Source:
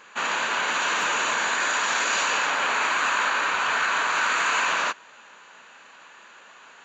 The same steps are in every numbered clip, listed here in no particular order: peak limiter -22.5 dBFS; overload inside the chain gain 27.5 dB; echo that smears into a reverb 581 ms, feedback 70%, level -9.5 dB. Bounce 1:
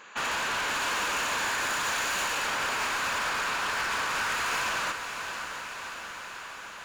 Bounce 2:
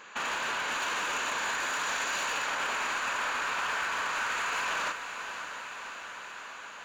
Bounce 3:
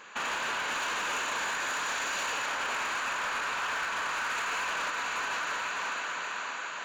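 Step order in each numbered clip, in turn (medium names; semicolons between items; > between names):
overload inside the chain > echo that smears into a reverb > peak limiter; peak limiter > overload inside the chain > echo that smears into a reverb; echo that smears into a reverb > peak limiter > overload inside the chain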